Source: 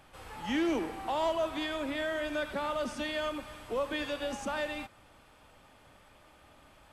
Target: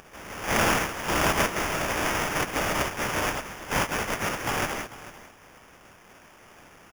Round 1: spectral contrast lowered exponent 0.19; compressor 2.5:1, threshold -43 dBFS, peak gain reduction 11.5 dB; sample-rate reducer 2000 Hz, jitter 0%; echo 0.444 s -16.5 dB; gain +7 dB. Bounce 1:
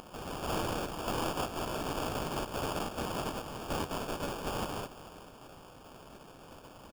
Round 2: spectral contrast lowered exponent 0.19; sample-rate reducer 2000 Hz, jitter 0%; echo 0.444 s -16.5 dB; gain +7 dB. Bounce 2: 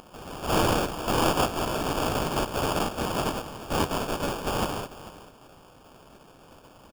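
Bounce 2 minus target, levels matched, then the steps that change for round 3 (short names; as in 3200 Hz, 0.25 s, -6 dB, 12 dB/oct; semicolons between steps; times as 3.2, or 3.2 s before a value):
sample-rate reducer: distortion +5 dB
change: sample-rate reducer 4100 Hz, jitter 0%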